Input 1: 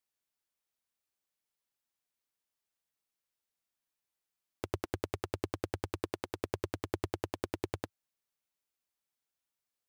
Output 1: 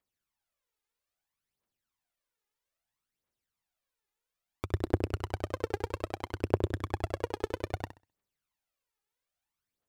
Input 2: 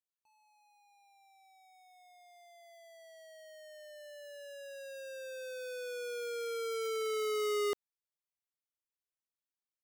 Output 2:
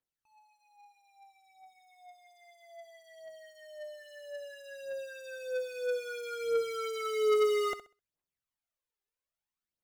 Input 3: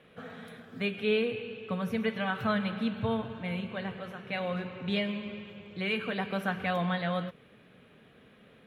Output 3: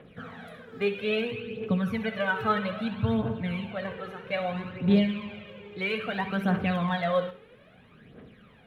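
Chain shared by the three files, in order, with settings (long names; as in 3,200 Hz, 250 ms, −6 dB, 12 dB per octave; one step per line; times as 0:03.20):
high-shelf EQ 3,300 Hz −7.5 dB
phase shifter 0.61 Hz, delay 2.5 ms, feedback 65%
on a send: flutter between parallel walls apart 11.1 metres, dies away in 0.31 s
on the sum: level +2 dB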